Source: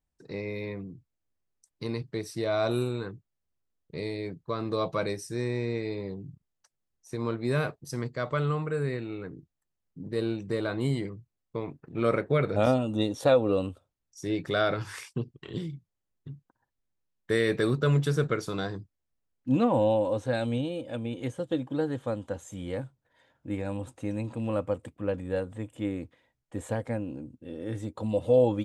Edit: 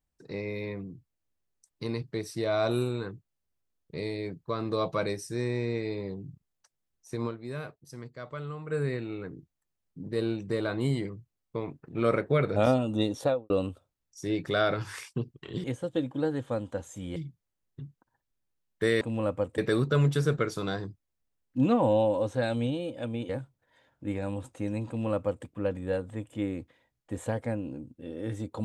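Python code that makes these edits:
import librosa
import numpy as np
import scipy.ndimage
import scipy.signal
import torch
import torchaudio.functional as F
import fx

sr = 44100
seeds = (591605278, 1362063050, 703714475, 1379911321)

y = fx.studio_fade_out(x, sr, start_s=13.14, length_s=0.36)
y = fx.edit(y, sr, fx.fade_down_up(start_s=7.26, length_s=1.47, db=-10.0, fade_s=0.4, curve='exp'),
    fx.move(start_s=21.2, length_s=1.52, to_s=15.64),
    fx.duplicate(start_s=24.31, length_s=0.57, to_s=17.49), tone=tone)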